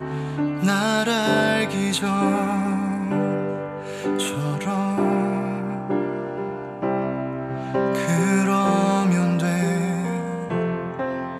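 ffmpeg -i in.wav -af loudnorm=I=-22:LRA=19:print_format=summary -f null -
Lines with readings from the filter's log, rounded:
Input Integrated:    -22.8 LUFS
Input True Peak:      -5.0 dBTP
Input LRA:             3.0 LU
Input Threshold:     -32.8 LUFS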